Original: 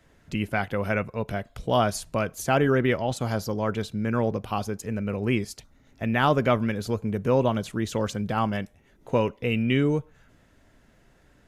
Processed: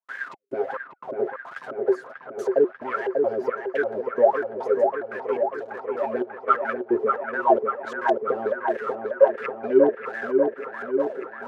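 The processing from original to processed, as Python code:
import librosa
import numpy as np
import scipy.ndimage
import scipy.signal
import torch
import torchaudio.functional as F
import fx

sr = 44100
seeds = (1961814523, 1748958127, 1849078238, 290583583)

p1 = x + 0.5 * 10.0 ** (-33.5 / 20.0) * np.sign(x)
p2 = scipy.signal.sosfilt(scipy.signal.butter(2, 280.0, 'highpass', fs=sr, output='sos'), p1)
p3 = fx.low_shelf(p2, sr, hz=370.0, db=5.5)
p4 = p3 + 0.69 * np.pad(p3, (int(7.5 * sr / 1000.0), 0))[:len(p3)]
p5 = fx.over_compress(p4, sr, threshold_db=-23.0, ratio=-1.0)
p6 = p4 + F.gain(torch.from_numpy(p5), -2.0).numpy()
p7 = fx.leveller(p6, sr, passes=2)
p8 = fx.step_gate(p7, sr, bpm=176, pattern='.xxx..xxx...x.x.', floor_db=-60.0, edge_ms=4.5)
p9 = fx.wah_lfo(p8, sr, hz=1.4, low_hz=360.0, high_hz=1700.0, q=16.0)
p10 = p9 + fx.echo_wet_lowpass(p9, sr, ms=591, feedback_pct=69, hz=2200.0, wet_db=-4.0, dry=0)
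y = F.gain(torch.from_numpy(p10), 5.5).numpy()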